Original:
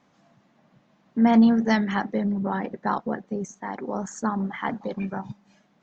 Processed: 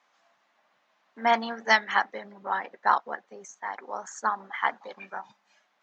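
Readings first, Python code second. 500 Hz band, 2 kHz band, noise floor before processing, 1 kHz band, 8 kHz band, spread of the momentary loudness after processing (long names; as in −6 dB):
−4.0 dB, +6.0 dB, −64 dBFS, +3.0 dB, can't be measured, 17 LU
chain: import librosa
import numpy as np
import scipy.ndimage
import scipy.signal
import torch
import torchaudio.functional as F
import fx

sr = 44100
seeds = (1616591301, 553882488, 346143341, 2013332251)

y = scipy.signal.sosfilt(scipy.signal.butter(2, 920.0, 'highpass', fs=sr, output='sos'), x)
y = fx.high_shelf(y, sr, hz=5500.0, db=-5.5)
y = fx.upward_expand(y, sr, threshold_db=-40.0, expansion=1.5)
y = y * librosa.db_to_amplitude(8.5)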